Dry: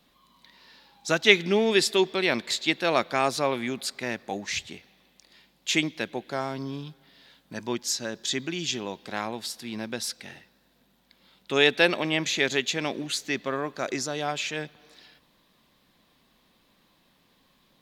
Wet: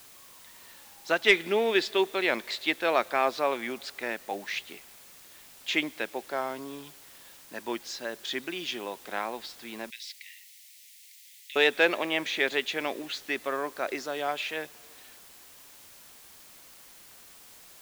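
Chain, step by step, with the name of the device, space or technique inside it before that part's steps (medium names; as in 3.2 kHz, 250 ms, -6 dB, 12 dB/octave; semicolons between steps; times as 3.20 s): tape answering machine (band-pass 370–3200 Hz; saturation -7 dBFS, distortion -23 dB; wow and flutter; white noise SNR 20 dB); 9.90–11.56 s: elliptic high-pass 2 kHz, stop band 40 dB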